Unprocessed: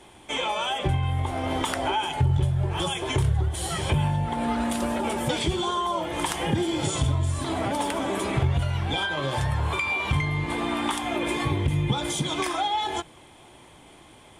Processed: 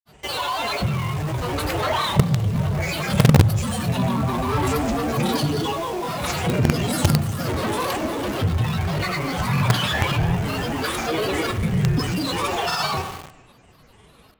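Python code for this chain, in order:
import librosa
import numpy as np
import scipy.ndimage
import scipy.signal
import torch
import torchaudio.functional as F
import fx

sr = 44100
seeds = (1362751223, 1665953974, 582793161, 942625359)

p1 = x + fx.room_early_taps(x, sr, ms=(26, 39), db=(-6.0, -11.5), dry=0)
p2 = fx.tremolo_random(p1, sr, seeds[0], hz=3.5, depth_pct=55)
p3 = fx.pitch_keep_formants(p2, sr, semitones=6.0)
p4 = fx.granulator(p3, sr, seeds[1], grain_ms=100.0, per_s=20.0, spray_ms=100.0, spread_st=7)
p5 = fx.low_shelf(p4, sr, hz=130.0, db=8.0)
p6 = fx.rev_spring(p5, sr, rt60_s=1.2, pass_ms=(33, 47), chirp_ms=75, drr_db=9.0)
p7 = fx.quant_companded(p6, sr, bits=2)
y = p6 + F.gain(torch.from_numpy(p7), -6.0).numpy()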